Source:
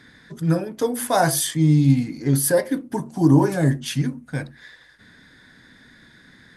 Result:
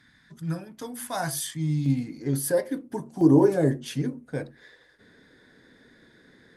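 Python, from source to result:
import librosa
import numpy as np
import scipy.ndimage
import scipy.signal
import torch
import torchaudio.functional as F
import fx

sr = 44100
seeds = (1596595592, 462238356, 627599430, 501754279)

y = fx.peak_eq(x, sr, hz=440.0, db=fx.steps((0.0, -9.0), (1.86, 4.5), (3.21, 13.5)), octaves=1.1)
y = y * 10.0 ** (-8.5 / 20.0)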